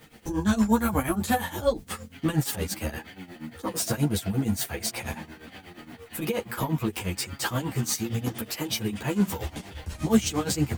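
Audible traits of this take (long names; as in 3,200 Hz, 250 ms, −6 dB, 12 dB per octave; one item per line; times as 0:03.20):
a quantiser's noise floor 10 bits, dither triangular
tremolo triangle 8.5 Hz, depth 90%
a shimmering, thickened sound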